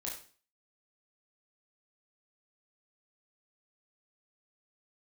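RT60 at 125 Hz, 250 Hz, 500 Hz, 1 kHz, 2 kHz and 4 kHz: 0.45, 0.50, 0.40, 0.40, 0.40, 0.40 seconds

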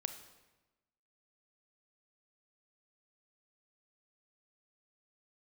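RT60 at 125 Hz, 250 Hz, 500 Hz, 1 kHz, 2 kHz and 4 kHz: 1.2, 1.2, 1.1, 1.1, 1.0, 0.90 seconds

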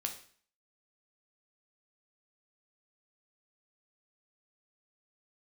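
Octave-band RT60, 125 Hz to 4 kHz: 0.50, 0.50, 0.45, 0.50, 0.50, 0.50 seconds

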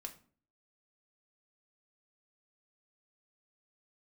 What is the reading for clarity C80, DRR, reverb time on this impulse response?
18.5 dB, 3.5 dB, 0.45 s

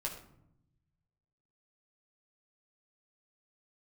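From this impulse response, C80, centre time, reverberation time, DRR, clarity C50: 10.5 dB, 23 ms, 0.75 s, −1.0 dB, 7.5 dB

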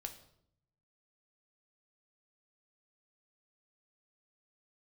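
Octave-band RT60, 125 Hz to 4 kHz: 1.2, 0.90, 0.75, 0.65, 0.55, 0.55 seconds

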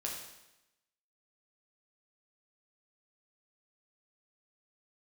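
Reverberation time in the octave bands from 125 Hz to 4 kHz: 0.90, 0.95, 0.90, 0.95, 0.95, 0.90 seconds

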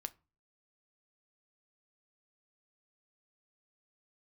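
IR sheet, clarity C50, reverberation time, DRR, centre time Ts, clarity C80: 23.0 dB, 0.30 s, 10.5 dB, 3 ms, 29.0 dB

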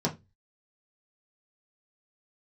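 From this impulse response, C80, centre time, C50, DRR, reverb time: 25.0 dB, 12 ms, 16.0 dB, −3.5 dB, 0.20 s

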